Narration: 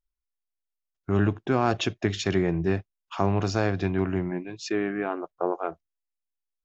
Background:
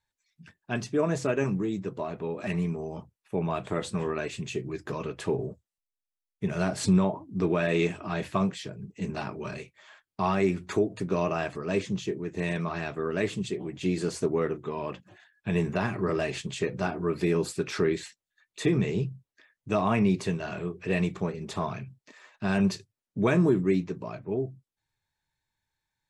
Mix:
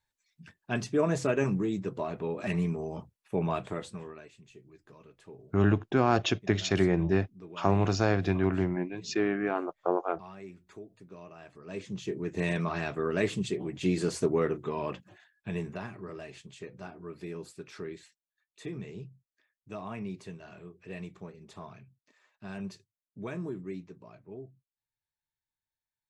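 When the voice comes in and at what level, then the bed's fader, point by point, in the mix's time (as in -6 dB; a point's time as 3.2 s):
4.45 s, -1.0 dB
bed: 3.54 s -0.5 dB
4.37 s -21 dB
11.36 s -21 dB
12.23 s 0 dB
14.98 s 0 dB
16.08 s -14.5 dB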